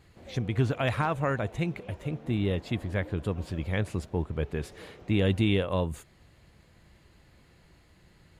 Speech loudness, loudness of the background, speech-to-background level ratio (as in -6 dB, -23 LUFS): -30.0 LUFS, -49.5 LUFS, 19.5 dB